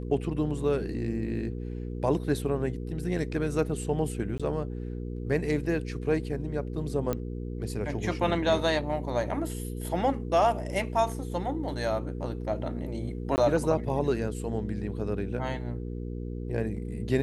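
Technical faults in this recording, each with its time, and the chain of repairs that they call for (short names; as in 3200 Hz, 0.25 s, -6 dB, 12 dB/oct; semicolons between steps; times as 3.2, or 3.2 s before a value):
hum 60 Hz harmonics 8 -35 dBFS
4.38–4.4 gap 16 ms
7.13 pop -16 dBFS
13.36–13.38 gap 19 ms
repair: de-click; de-hum 60 Hz, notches 8; interpolate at 4.38, 16 ms; interpolate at 13.36, 19 ms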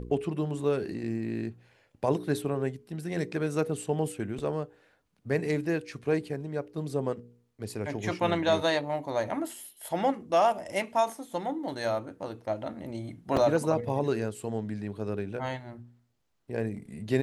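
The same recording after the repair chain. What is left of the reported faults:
none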